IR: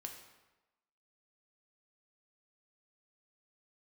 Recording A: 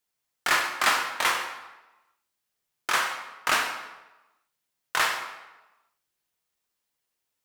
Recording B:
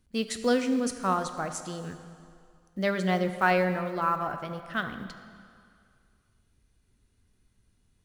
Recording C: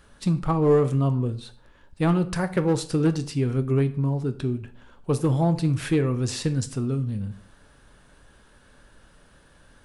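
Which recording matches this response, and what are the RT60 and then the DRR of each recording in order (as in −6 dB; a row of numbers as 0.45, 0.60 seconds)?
A; 1.1, 2.3, 0.50 seconds; 2.5, 8.0, 10.0 decibels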